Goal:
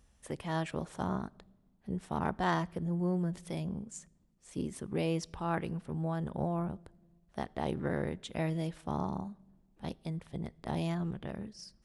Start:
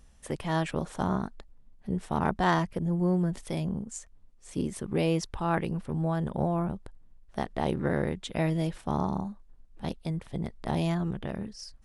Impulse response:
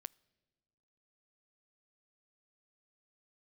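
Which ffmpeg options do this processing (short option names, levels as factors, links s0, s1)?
-filter_complex "[0:a]highpass=42[s0];[1:a]atrim=start_sample=2205[s1];[s0][s1]afir=irnorm=-1:irlink=0"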